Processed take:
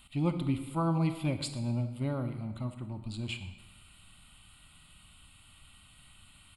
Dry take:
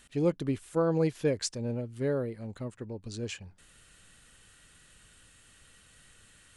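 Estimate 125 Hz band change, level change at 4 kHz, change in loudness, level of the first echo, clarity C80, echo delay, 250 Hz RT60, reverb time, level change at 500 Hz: +3.0 dB, 0.0 dB, −1.5 dB, −18.0 dB, 11.0 dB, 118 ms, 1.1 s, 1.2 s, −10.0 dB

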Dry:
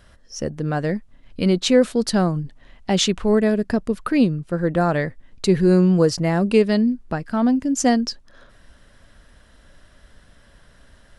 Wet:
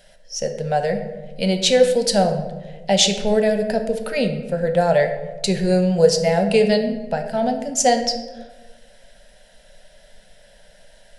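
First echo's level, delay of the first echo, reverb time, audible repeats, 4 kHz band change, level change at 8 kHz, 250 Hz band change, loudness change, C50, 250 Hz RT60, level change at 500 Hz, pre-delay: no echo audible, no echo audible, 1.3 s, no echo audible, +5.5 dB, +5.5 dB, −4.5 dB, +0.5 dB, 8.5 dB, 1.5 s, +3.5 dB, 3 ms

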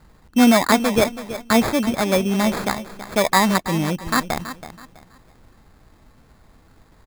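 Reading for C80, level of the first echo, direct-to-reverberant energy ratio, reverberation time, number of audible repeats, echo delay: no reverb audible, −13.0 dB, no reverb audible, no reverb audible, 3, 327 ms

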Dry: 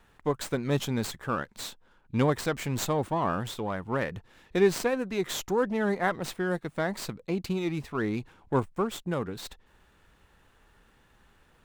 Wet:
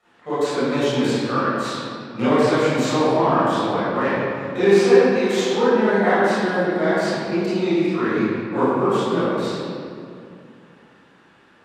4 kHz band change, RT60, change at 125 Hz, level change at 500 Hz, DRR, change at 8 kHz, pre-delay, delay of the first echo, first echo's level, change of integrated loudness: +8.5 dB, 2.4 s, +4.5 dB, +11.5 dB, −15.0 dB, +3.0 dB, 24 ms, no echo audible, no echo audible, +10.5 dB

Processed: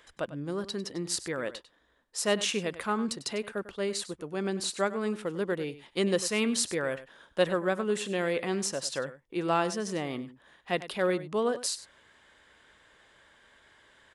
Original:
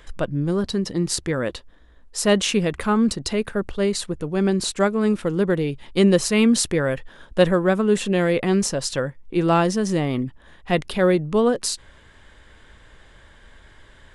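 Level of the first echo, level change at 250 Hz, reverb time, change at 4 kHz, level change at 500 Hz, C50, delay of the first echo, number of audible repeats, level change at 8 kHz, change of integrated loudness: −15.0 dB, −13.0 dB, no reverb audible, −6.5 dB, −9.0 dB, no reverb audible, 98 ms, 1, −6.5 dB, −9.5 dB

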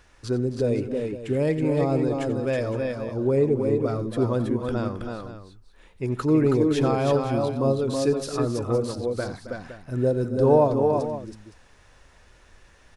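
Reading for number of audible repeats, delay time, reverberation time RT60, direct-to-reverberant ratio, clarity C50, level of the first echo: 4, 89 ms, no reverb audible, no reverb audible, no reverb audible, −15.5 dB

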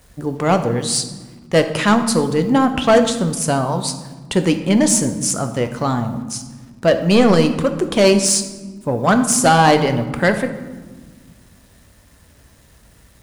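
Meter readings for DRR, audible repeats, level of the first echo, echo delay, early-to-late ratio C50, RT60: 7.0 dB, no echo audible, no echo audible, no echo audible, 9.5 dB, 1.4 s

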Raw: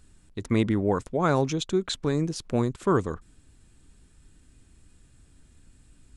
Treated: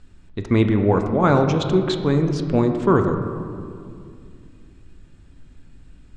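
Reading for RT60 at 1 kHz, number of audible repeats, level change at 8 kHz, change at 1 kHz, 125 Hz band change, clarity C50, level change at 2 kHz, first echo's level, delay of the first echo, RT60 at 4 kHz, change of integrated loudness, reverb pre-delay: 2.2 s, no echo audible, can't be measured, +7.0 dB, +8.5 dB, 7.0 dB, +6.0 dB, no echo audible, no echo audible, 1.2 s, +7.0 dB, 3 ms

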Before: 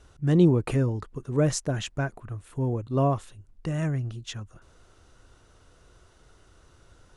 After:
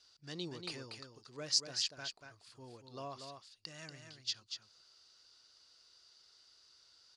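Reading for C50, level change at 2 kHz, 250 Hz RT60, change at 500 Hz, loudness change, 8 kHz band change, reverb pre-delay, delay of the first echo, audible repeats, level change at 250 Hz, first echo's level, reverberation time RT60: no reverb audible, −11.0 dB, no reverb audible, −21.5 dB, −14.0 dB, −4.0 dB, no reverb audible, 237 ms, 1, −25.5 dB, −6.5 dB, no reverb audible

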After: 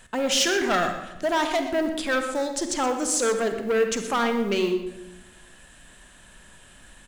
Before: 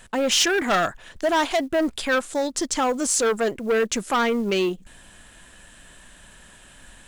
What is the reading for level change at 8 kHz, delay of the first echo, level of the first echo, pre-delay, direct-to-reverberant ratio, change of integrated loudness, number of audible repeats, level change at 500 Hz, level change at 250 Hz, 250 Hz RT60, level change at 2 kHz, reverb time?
−2.5 dB, 122 ms, −12.5 dB, 36 ms, 6.0 dB, −2.0 dB, 1, −1.5 dB, −1.5 dB, 1.3 s, −2.0 dB, 1.1 s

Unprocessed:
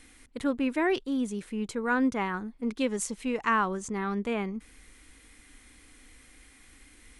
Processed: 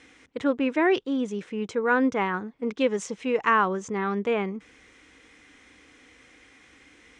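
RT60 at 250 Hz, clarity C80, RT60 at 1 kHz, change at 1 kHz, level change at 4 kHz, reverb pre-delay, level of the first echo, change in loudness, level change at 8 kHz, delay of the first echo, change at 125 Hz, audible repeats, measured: no reverb audible, no reverb audible, no reverb audible, +4.5 dB, +3.0 dB, no reverb audible, no echo audible, +4.0 dB, −4.0 dB, no echo audible, can't be measured, no echo audible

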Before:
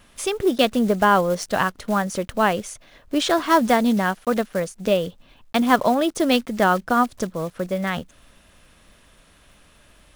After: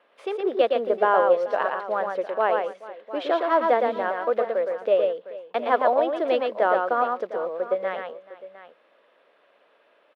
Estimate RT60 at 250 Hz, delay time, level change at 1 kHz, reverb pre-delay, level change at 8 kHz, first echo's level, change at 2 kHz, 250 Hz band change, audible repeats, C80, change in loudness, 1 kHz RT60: no reverb audible, 115 ms, −2.0 dB, no reverb audible, below −30 dB, −4.0 dB, −5.5 dB, −13.5 dB, 3, no reverb audible, −2.5 dB, no reverb audible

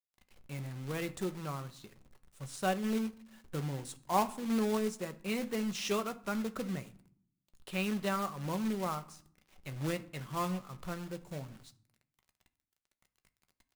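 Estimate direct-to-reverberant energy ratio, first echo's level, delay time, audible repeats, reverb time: 8.5 dB, no echo audible, no echo audible, no echo audible, 0.60 s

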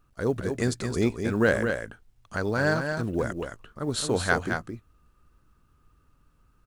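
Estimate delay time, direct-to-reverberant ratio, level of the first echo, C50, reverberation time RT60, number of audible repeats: 218 ms, no reverb audible, −6.0 dB, no reverb audible, no reverb audible, 1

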